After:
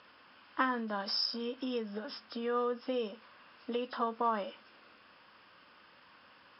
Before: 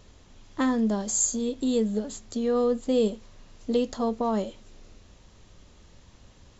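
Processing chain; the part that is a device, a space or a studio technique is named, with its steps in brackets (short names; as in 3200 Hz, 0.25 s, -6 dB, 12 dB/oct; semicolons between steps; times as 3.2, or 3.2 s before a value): hearing aid with frequency lowering (nonlinear frequency compression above 2700 Hz 1.5:1; compressor 4:1, threshold -26 dBFS, peak gain reduction 6.5 dB; speaker cabinet 390–5300 Hz, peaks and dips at 400 Hz -9 dB, 660 Hz -4 dB, 1100 Hz +6 dB, 1500 Hz +10 dB, 2700 Hz +5 dB, 3900 Hz -7 dB)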